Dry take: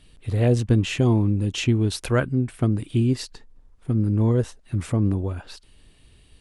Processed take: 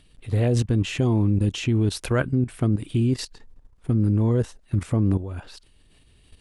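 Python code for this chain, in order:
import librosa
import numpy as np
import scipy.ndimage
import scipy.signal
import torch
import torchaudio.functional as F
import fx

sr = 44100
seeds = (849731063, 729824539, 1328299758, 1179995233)

y = fx.level_steps(x, sr, step_db=12)
y = y * 10.0 ** (4.5 / 20.0)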